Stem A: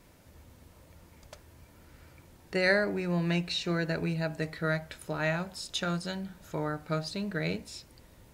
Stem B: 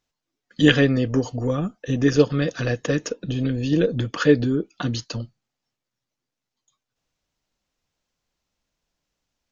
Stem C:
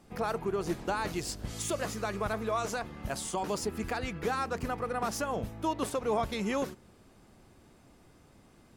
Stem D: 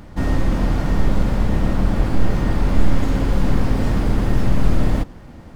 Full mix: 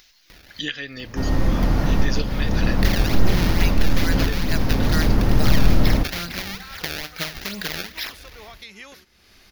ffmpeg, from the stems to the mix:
-filter_complex "[0:a]dynaudnorm=f=880:g=3:m=13dB,acrusher=samples=25:mix=1:aa=0.000001:lfo=1:lforange=40:lforate=2.3,adelay=300,volume=2.5dB[a];[1:a]volume=-4dB,asplit=2[b][c];[2:a]adelay=2300,volume=-8.5dB[d];[3:a]adelay=1000,volume=0.5dB[e];[c]apad=whole_len=289019[f];[e][f]sidechaincompress=threshold=-23dB:ratio=4:attack=39:release=740[g];[a][b][d]amix=inputs=3:normalize=0,equalizer=f=125:t=o:w=1:g=-12,equalizer=f=250:t=o:w=1:g=-7,equalizer=f=500:t=o:w=1:g=-7,equalizer=f=1k:t=o:w=1:g=-6,equalizer=f=2k:t=o:w=1:g=7,equalizer=f=4k:t=o:w=1:g=7,acompressor=threshold=-26dB:ratio=5,volume=0dB[h];[g][h]amix=inputs=2:normalize=0,acompressor=mode=upward:threshold=-36dB:ratio=2.5,aexciter=amount=1.3:drive=2.2:freq=4.6k"

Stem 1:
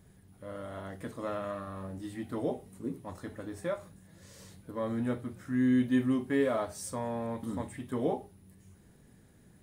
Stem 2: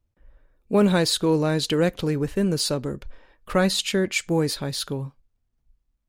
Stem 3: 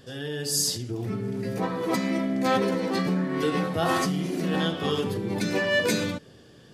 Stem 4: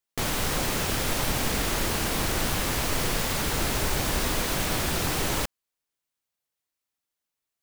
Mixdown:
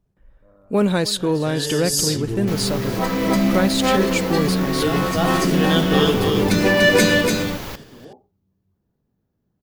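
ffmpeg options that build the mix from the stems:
-filter_complex "[0:a]lowpass=f=1.3k:w=0.5412,lowpass=f=1.3k:w=1.3066,volume=-12.5dB[a];[1:a]volume=0.5dB,asplit=3[b][c][d];[c]volume=-19dB[e];[2:a]acontrast=84,adelay=1100,volume=1.5dB,asplit=2[f][g];[g]volume=-4dB[h];[3:a]equalizer=f=8.7k:t=o:w=0.49:g=-13,adelay=2300,volume=-4.5dB,asplit=2[i][j];[j]volume=-19.5dB[k];[d]apad=whole_len=345565[l];[f][l]sidechaincompress=threshold=-38dB:ratio=4:attack=16:release=459[m];[e][h][k]amix=inputs=3:normalize=0,aecho=0:1:292:1[n];[a][b][m][i][n]amix=inputs=5:normalize=0"

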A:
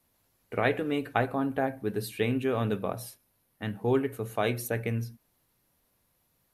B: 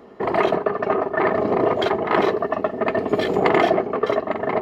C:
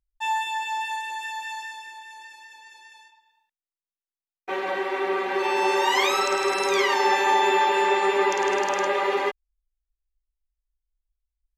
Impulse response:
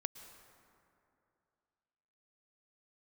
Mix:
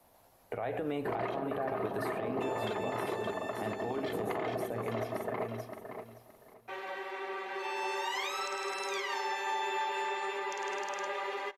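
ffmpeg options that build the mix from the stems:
-filter_complex "[0:a]equalizer=f=720:t=o:w=1.3:g=14.5,alimiter=limit=-18.5dB:level=0:latency=1,acrossover=split=130|1700[a][b][c];[a]acompressor=threshold=-51dB:ratio=4[d];[b]acompressor=threshold=-37dB:ratio=4[e];[c]acompressor=threshold=-53dB:ratio=4[f];[d][e][f]amix=inputs=3:normalize=0,volume=1.5dB,asplit=3[g][h][i];[h]volume=-9dB[j];[i]volume=-4dB[k];[1:a]adelay=850,volume=-12dB,asplit=2[l][m];[m]volume=-10dB[n];[2:a]lowshelf=f=320:g=-11.5,adelay=2200,volume=-13.5dB,asplit=2[o][p];[p]volume=-7dB[q];[3:a]atrim=start_sample=2205[r];[j][q]amix=inputs=2:normalize=0[s];[s][r]afir=irnorm=-1:irlink=0[t];[k][n]amix=inputs=2:normalize=0,aecho=0:1:570|1140|1710:1|0.21|0.0441[u];[g][l][o][t][u]amix=inputs=5:normalize=0,alimiter=level_in=1dB:limit=-24dB:level=0:latency=1:release=168,volume=-1dB"

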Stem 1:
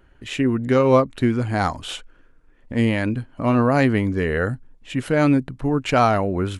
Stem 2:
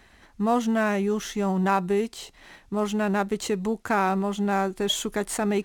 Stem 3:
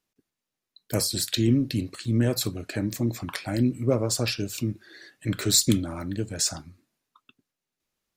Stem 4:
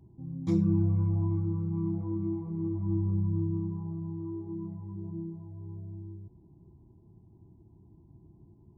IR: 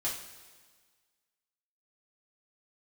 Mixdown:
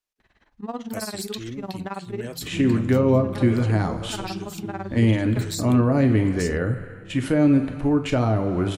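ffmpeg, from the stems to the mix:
-filter_complex "[0:a]agate=range=-12dB:threshold=-40dB:ratio=16:detection=peak,adelay=2200,volume=-2.5dB,asplit=2[a][b];[b]volume=-6dB[c];[1:a]lowpass=4.4k,tremolo=f=18:d=0.92,adelay=200,volume=-5dB,asplit=2[d][e];[e]volume=-18.5dB[f];[2:a]equalizer=f=180:w=0.8:g=-13,volume=-5.5dB[g];[3:a]adelay=2050,volume=-5.5dB[h];[4:a]atrim=start_sample=2205[i];[c][f]amix=inputs=2:normalize=0[j];[j][i]afir=irnorm=-1:irlink=0[k];[a][d][g][h][k]amix=inputs=5:normalize=0,acrossover=split=480[l][m];[m]acompressor=threshold=-29dB:ratio=6[n];[l][n]amix=inputs=2:normalize=0"

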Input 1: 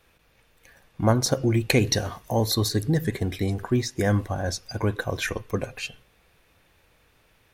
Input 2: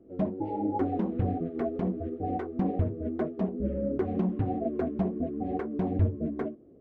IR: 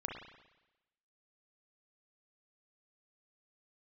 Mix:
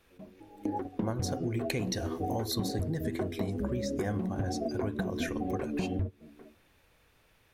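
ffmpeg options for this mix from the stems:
-filter_complex "[0:a]volume=-4dB,asplit=2[a][b];[1:a]volume=2.5dB[c];[b]apad=whole_len=299967[d];[c][d]sidechaingate=range=-23dB:threshold=-58dB:ratio=16:detection=peak[e];[a][e]amix=inputs=2:normalize=0,acompressor=threshold=-29dB:ratio=6"

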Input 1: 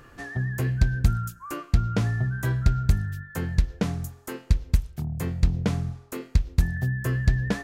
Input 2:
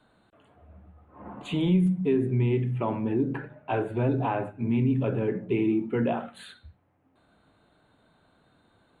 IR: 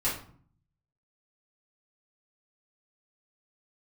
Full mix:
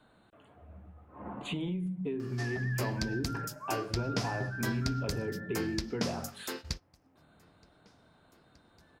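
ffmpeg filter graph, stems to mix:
-filter_complex "[0:a]highpass=f=380:p=1,equalizer=f=5.1k:t=o:w=0.5:g=13,alimiter=limit=-16dB:level=0:latency=1:release=288,adelay=2200,volume=-2dB[a];[1:a]acompressor=threshold=-33dB:ratio=6,volume=0dB,asplit=2[b][c];[c]apad=whole_len=433680[d];[a][d]sidechaingate=range=-29dB:threshold=-55dB:ratio=16:detection=peak[e];[e][b]amix=inputs=2:normalize=0"

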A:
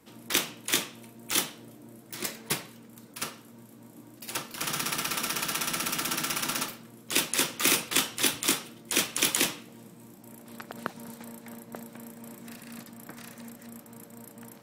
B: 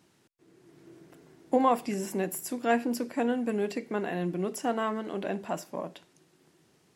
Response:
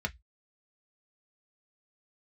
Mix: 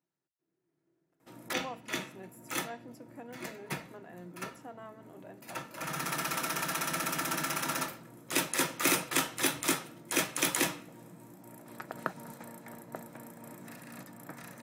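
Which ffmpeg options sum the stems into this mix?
-filter_complex "[0:a]adelay=1200,volume=-2.5dB,asplit=2[a][b];[b]volume=-7.5dB[c];[1:a]volume=-19dB,asplit=3[d][e][f];[e]volume=-10.5dB[g];[f]apad=whole_len=697991[h];[a][h]sidechaincompress=threshold=-53dB:ratio=3:attack=16:release=639[i];[2:a]atrim=start_sample=2205[j];[c][g]amix=inputs=2:normalize=0[k];[k][j]afir=irnorm=-1:irlink=0[l];[i][d][l]amix=inputs=3:normalize=0,highpass=96,agate=range=-7dB:threshold=-59dB:ratio=16:detection=peak"

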